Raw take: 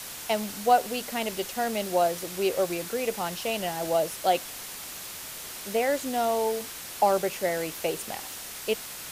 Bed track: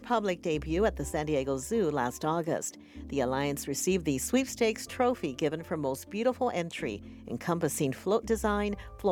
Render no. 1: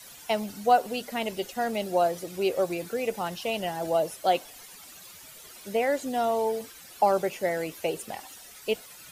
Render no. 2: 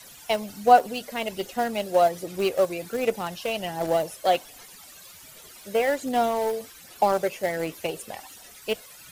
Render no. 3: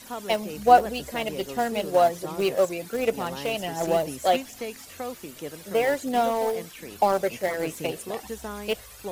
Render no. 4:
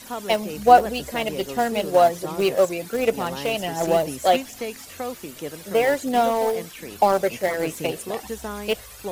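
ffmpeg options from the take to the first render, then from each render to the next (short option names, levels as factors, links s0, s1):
-af "afftdn=nr=13:nf=-40"
-filter_complex "[0:a]aphaser=in_gain=1:out_gain=1:delay=1.9:decay=0.32:speed=1.3:type=sinusoidal,asplit=2[s0][s1];[s1]aeval=exprs='val(0)*gte(abs(val(0)),0.075)':c=same,volume=0.299[s2];[s0][s2]amix=inputs=2:normalize=0"
-filter_complex "[1:a]volume=0.422[s0];[0:a][s0]amix=inputs=2:normalize=0"
-af "volume=1.5,alimiter=limit=0.794:level=0:latency=1"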